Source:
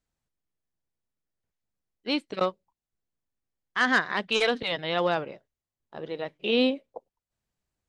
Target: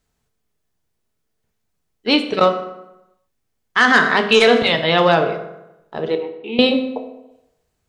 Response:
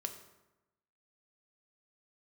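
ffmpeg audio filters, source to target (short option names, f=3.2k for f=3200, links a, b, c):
-filter_complex "[0:a]asettb=1/sr,asplit=3[a][b][c];[a]atrim=end=6.154[d];[b]atrim=start=6.15:end=6.59,asetpts=PTS-STARTPTS,afade=t=in:d=0.004:c=qsin,afade=t=out:st=0.436:d=0.004:c=qsin,asplit=3[e][f][g];[e]bandpass=f=300:t=q:w=8,volume=0dB[h];[f]bandpass=f=870:t=q:w=8,volume=-6dB[i];[g]bandpass=f=2.24k:t=q:w=8,volume=-9dB[j];[h][i][j]amix=inputs=3:normalize=0[k];[c]atrim=start=6.586[l];[d][k]acrossfade=d=0.004:c1=hsin:c2=qsin[m];[m][l]acrossfade=d=0.004:c1=qsin:c2=hsin[n];[1:a]atrim=start_sample=2205,asetrate=48510,aresample=44100[o];[n][o]afir=irnorm=-1:irlink=0,alimiter=level_in=16dB:limit=-1dB:release=50:level=0:latency=1,volume=-1dB"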